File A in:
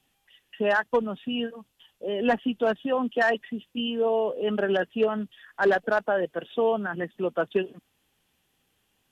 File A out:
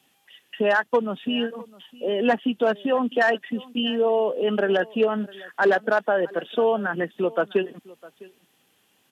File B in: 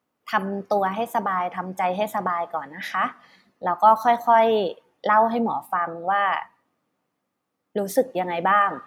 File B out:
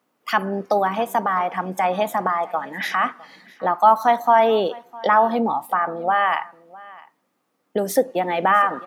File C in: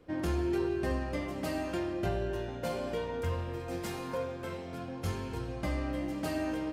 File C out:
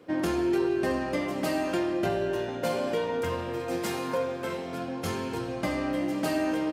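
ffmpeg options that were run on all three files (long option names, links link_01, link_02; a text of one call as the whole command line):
ffmpeg -i in.wav -filter_complex "[0:a]highpass=170,asplit=2[link_01][link_02];[link_02]acompressor=threshold=-31dB:ratio=6,volume=2.5dB[link_03];[link_01][link_03]amix=inputs=2:normalize=0,aecho=1:1:656:0.0794" out.wav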